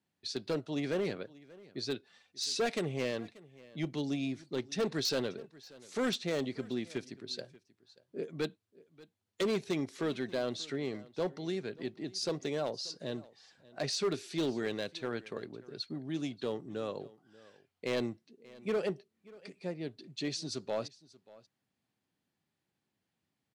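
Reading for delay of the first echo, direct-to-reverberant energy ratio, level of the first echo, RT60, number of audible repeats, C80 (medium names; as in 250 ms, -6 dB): 585 ms, no reverb, -21.5 dB, no reverb, 1, no reverb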